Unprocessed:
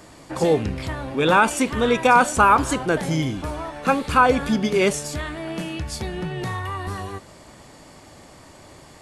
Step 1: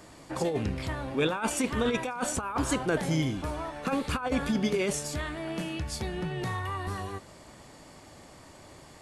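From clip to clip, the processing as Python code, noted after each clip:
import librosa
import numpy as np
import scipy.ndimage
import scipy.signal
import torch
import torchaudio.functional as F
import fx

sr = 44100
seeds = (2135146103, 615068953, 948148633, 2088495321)

y = fx.over_compress(x, sr, threshold_db=-19.0, ratio=-0.5)
y = y * librosa.db_to_amplitude(-7.0)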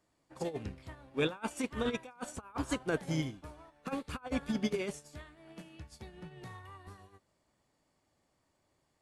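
y = fx.upward_expand(x, sr, threshold_db=-39.0, expansion=2.5)
y = y * librosa.db_to_amplitude(-3.0)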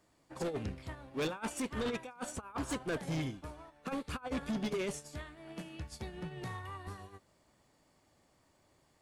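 y = fx.rider(x, sr, range_db=3, speed_s=2.0)
y = 10.0 ** (-34.5 / 20.0) * np.tanh(y / 10.0 ** (-34.5 / 20.0))
y = y * librosa.db_to_amplitude(3.5)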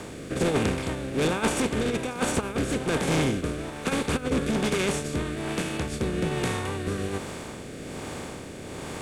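y = fx.bin_compress(x, sr, power=0.4)
y = fx.rotary(y, sr, hz=1.2)
y = y * librosa.db_to_amplitude(8.0)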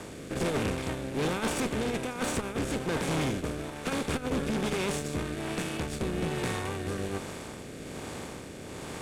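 y = fx.cvsd(x, sr, bps=64000)
y = fx.tube_stage(y, sr, drive_db=24.0, bias=0.65)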